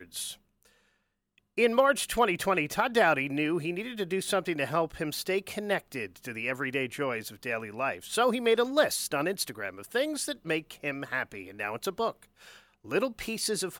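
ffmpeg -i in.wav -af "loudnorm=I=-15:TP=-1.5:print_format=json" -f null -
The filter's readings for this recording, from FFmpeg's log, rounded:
"input_i" : "-30.0",
"input_tp" : "-11.7",
"input_lra" : "5.4",
"input_thresh" : "-40.4",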